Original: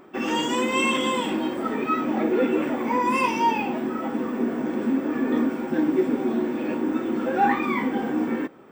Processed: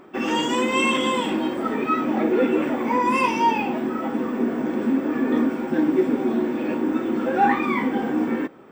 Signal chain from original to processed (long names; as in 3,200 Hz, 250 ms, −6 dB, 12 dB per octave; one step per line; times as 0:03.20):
high-shelf EQ 9,200 Hz −5 dB
level +2 dB